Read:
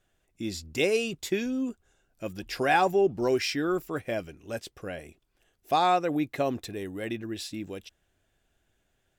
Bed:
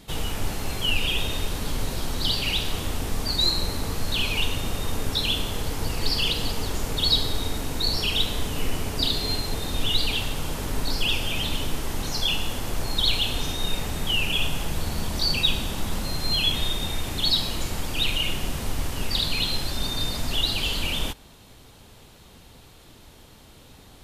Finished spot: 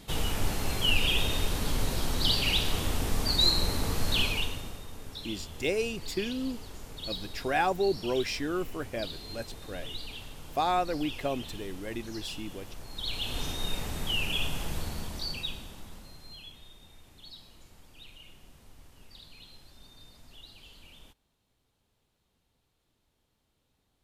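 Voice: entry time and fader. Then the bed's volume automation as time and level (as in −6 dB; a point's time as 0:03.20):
4.85 s, −4.0 dB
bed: 0:04.20 −1.5 dB
0:04.87 −16.5 dB
0:12.89 −16.5 dB
0:13.39 −6 dB
0:14.76 −6 dB
0:16.60 −26.5 dB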